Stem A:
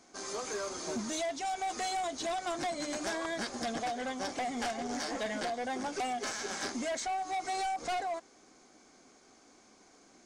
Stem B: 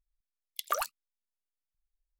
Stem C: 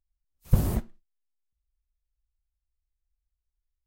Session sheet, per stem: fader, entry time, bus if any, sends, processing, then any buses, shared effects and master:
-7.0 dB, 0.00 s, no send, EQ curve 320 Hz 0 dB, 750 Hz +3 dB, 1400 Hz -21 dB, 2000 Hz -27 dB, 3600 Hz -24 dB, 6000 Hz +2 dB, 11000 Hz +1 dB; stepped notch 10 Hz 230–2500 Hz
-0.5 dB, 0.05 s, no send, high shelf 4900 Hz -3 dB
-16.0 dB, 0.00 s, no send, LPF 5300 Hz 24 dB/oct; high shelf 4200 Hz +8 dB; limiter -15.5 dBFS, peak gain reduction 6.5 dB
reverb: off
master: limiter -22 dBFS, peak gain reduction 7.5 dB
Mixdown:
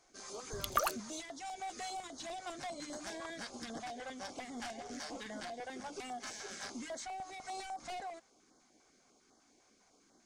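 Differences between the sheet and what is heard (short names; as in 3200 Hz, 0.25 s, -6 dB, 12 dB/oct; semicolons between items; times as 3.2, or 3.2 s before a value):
stem A: missing EQ curve 320 Hz 0 dB, 750 Hz +3 dB, 1400 Hz -21 dB, 2000 Hz -27 dB, 3600 Hz -24 dB, 6000 Hz +2 dB, 11000 Hz +1 dB; stem C -16.0 dB -> -23.0 dB; master: missing limiter -22 dBFS, peak gain reduction 7.5 dB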